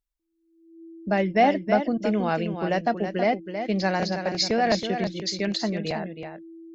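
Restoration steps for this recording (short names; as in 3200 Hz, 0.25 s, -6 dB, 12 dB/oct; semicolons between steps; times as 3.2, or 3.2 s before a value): notch 330 Hz, Q 30; inverse comb 0.322 s -8 dB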